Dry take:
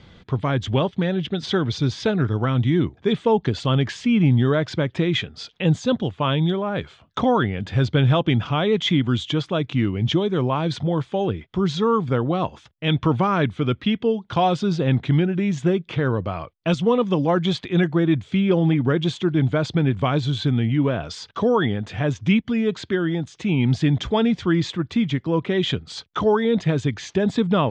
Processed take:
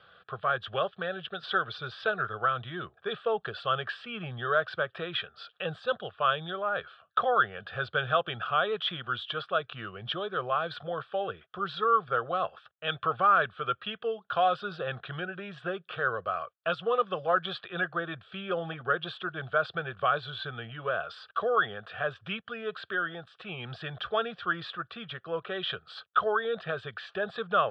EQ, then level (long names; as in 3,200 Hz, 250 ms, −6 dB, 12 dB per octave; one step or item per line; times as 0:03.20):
resonant band-pass 1,300 Hz, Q 1.6
phaser with its sweep stopped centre 1,400 Hz, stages 8
+4.5 dB